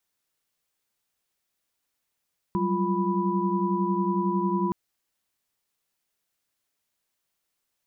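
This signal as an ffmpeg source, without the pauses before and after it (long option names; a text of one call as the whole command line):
ffmpeg -f lavfi -i "aevalsrc='0.0398*(sin(2*PI*185*t)+sin(2*PI*196*t)+sin(2*PI*349.23*t)+sin(2*PI*987.77*t))':duration=2.17:sample_rate=44100" out.wav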